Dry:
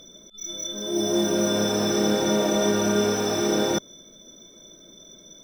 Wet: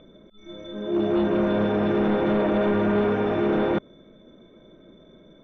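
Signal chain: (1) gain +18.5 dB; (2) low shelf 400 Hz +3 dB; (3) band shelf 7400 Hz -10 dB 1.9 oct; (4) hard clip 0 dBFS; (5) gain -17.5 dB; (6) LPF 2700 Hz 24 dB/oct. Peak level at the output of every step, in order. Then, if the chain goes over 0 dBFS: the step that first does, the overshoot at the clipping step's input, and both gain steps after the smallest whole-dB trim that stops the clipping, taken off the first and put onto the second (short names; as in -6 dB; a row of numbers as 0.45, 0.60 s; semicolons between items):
+9.5, +11.0, +10.0, 0.0, -17.5, -16.5 dBFS; step 1, 10.0 dB; step 1 +8.5 dB, step 5 -7.5 dB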